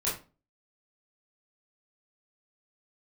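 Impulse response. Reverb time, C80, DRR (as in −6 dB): 0.35 s, 13.0 dB, −8.5 dB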